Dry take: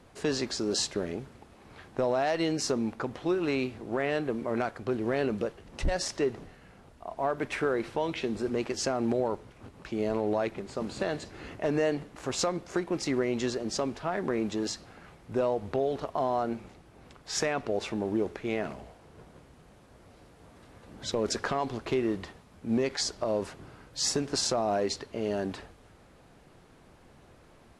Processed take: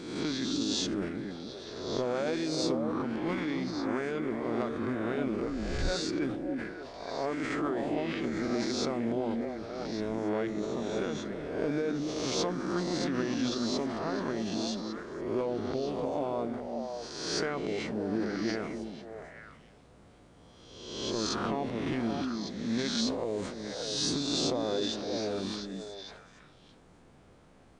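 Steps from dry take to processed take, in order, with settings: spectral swells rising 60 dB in 1.13 s; formant shift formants -3 st; delay with a stepping band-pass 0.288 s, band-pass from 230 Hz, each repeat 1.4 oct, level -0.5 dB; sustainer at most 55 dB/s; gain -6 dB

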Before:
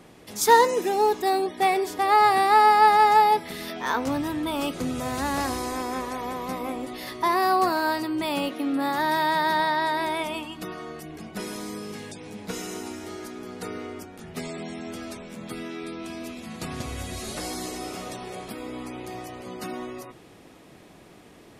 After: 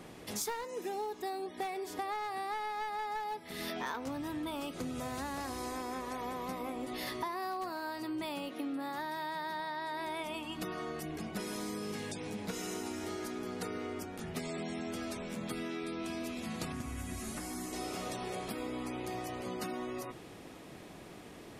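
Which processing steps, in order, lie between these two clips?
one-sided fold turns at -16.5 dBFS; compressor 12:1, threshold -35 dBFS, peak gain reduction 24 dB; 16.72–17.73 ten-band EQ 125 Hz -3 dB, 250 Hz +5 dB, 500 Hz -10 dB, 4000 Hz -10 dB

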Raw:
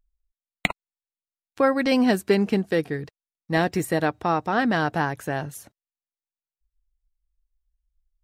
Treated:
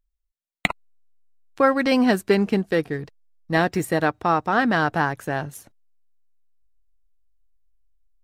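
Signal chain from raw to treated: dynamic EQ 1300 Hz, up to +4 dB, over -34 dBFS, Q 1.5; in parallel at -4.5 dB: backlash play -34.5 dBFS; on the sum: gain -3 dB

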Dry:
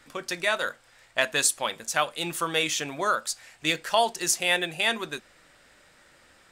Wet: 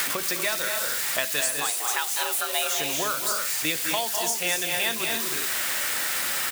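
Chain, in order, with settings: switching spikes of -19 dBFS; in parallel at -4 dB: requantised 6-bit, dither triangular; 1.41–2.76 on the sum: frequency shift +220 Hz; on a send: loudspeakers at several distances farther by 69 m -9 dB, 81 m -7 dB, 99 m -11 dB; on the sum: three-band squash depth 100%; gain -8 dB

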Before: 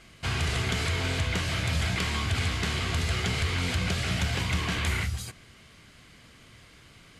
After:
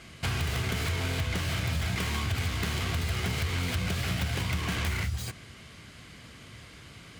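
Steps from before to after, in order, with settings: tracing distortion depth 0.19 ms; HPF 61 Hz; low shelf 140 Hz +4.5 dB; compressor 3:1, threshold -33 dBFS, peak gain reduction 9 dB; gain +4 dB

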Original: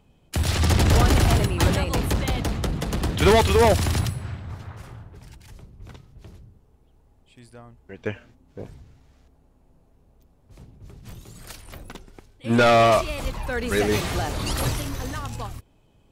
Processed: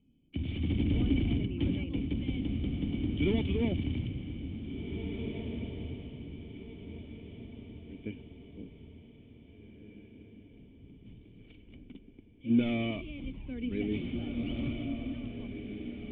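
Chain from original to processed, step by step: vocal tract filter i; diffused feedback echo 1.916 s, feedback 41%, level -7 dB

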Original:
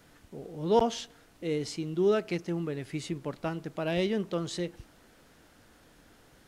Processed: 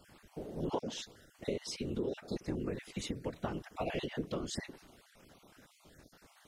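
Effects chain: random spectral dropouts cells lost 28%; compressor 8:1, threshold -33 dBFS, peak gain reduction 14 dB; whisperiser

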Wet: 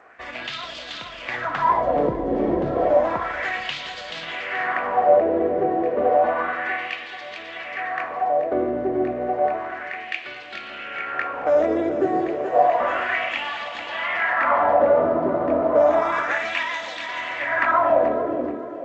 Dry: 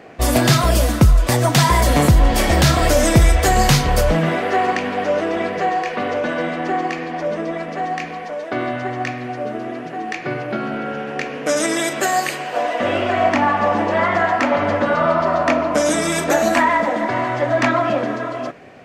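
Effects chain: octaver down 2 oct, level -1 dB; limiter -8.5 dBFS, peak gain reduction 8.5 dB; high shelf 4600 Hz -11.5 dB, from 5.69 s -3 dB; thinning echo 0.431 s, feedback 56%, high-pass 270 Hz, level -5 dB; dynamic EQ 6100 Hz, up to -6 dB, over -44 dBFS, Q 1.1; AGC gain up to 4 dB; wah 0.31 Hz 370–3700 Hz, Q 2.4; gain +2 dB; G.722 64 kbps 16000 Hz

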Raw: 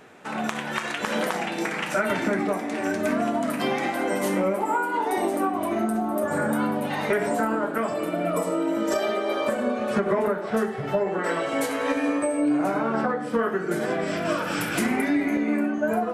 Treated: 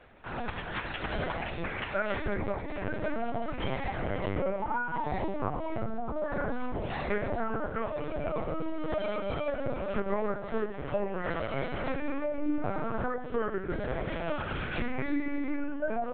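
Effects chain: LPC vocoder at 8 kHz pitch kept; gain -6.5 dB

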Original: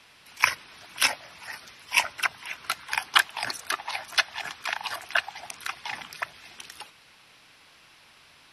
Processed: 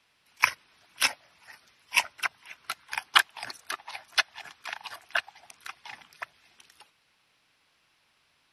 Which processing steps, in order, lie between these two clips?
upward expander 1.5:1, over -42 dBFS

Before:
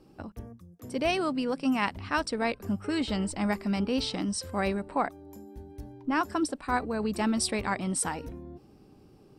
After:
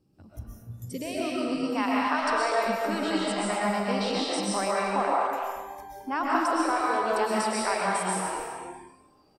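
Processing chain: high shelf 3200 Hz +9.5 dB; compressor 8:1, threshold -31 dBFS, peak gain reduction 14.5 dB; bell 110 Hz +13.5 dB 2.5 oct, from 1.75 s 890 Hz; speakerphone echo 0.25 s, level -7 dB; reverb RT60 1.4 s, pre-delay 85 ms, DRR -5 dB; spectral noise reduction 14 dB; gain -5 dB

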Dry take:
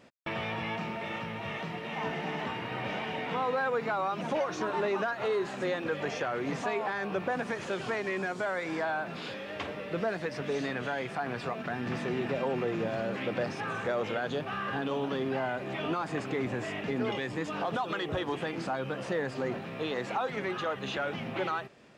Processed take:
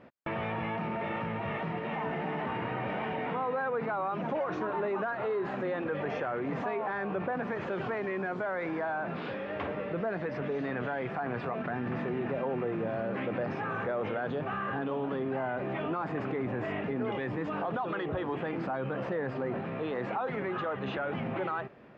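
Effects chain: LPF 1800 Hz 12 dB/oct; in parallel at -2 dB: negative-ratio compressor -38 dBFS, ratio -1; on the sum: gain -3 dB

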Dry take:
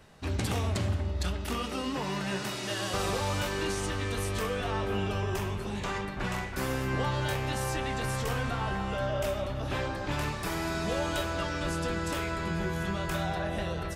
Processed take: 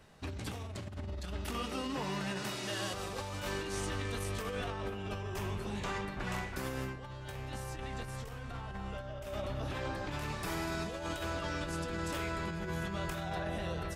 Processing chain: 6.95–9.26 low shelf 88 Hz +8 dB; negative-ratio compressor -32 dBFS, ratio -0.5; gain -5.5 dB

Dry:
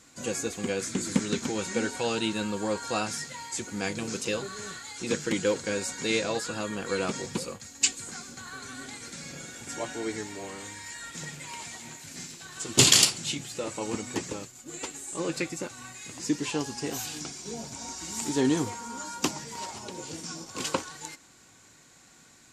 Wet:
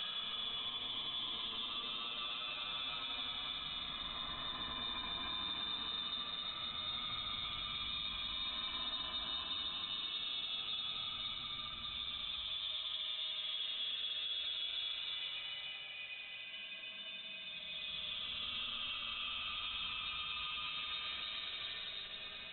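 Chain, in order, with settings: low shelf 87 Hz -7 dB; reverse; compressor 5:1, threshold -38 dBFS, peak gain reduction 22 dB; reverse; delay with a stepping band-pass 0.202 s, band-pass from 3000 Hz, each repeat -1.4 oct, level -3.5 dB; Paulstretch 20×, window 0.10 s, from 2.01; limiter -32 dBFS, peak gain reduction 6 dB; air absorption 110 m; inverted band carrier 3900 Hz

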